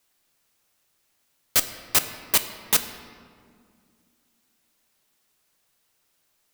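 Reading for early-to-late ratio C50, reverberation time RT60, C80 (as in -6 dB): 10.5 dB, 2.1 s, 11.5 dB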